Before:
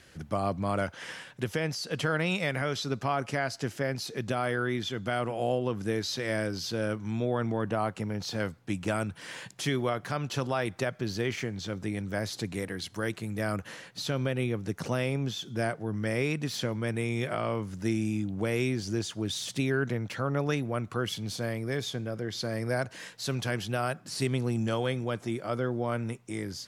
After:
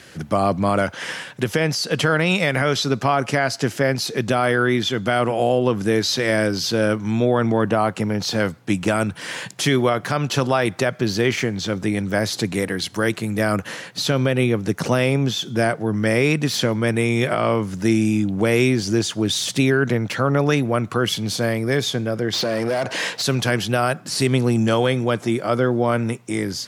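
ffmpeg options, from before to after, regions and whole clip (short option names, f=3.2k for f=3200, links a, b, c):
-filter_complex "[0:a]asettb=1/sr,asplit=3[a][b][c];[a]atrim=end=22.334[d];[b]atrim=start=22.33:end=23.22,asetpts=PTS-STARTPTS,afade=t=in:d=0.004:c=qsin,afade=t=out:st=0.886:d=0.004:c=qsin,equalizer=f=1.5k:w=1.3:g=-6,asplit=2[e][f];[f]highpass=f=720:p=1,volume=22dB,asoftclip=type=tanh:threshold=-19dB[g];[e][g]amix=inputs=2:normalize=0,lowpass=f=2.2k:p=1,volume=-6dB,acompressor=threshold=-31dB:ratio=4:attack=3.2:release=140:knee=1:detection=peak[h];[c]atrim=start=23.216[i];[d][h]acrossfade=d=0.004:c1=hsin:c2=qsin[j];[j][i]acrossfade=d=0.004:c1=qsin:c2=hsin,highpass=110,alimiter=level_in=18.5dB:limit=-1dB:release=50:level=0:latency=1,volume=-6.5dB"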